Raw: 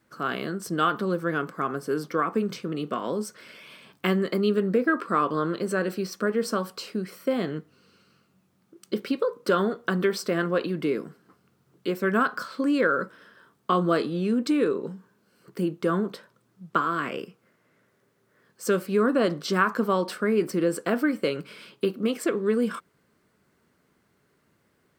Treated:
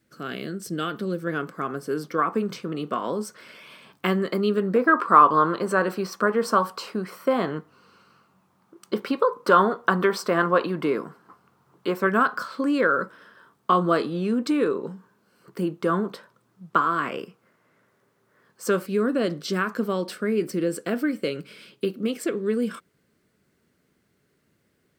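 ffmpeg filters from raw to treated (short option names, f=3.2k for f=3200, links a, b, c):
-af "asetnsamples=n=441:p=0,asendcmd='1.27 equalizer g -2;2.18 equalizer g 4;4.76 equalizer g 13.5;12.07 equalizer g 5;18.86 equalizer g -7',equalizer=f=990:t=o:w=1.1:g=-11.5"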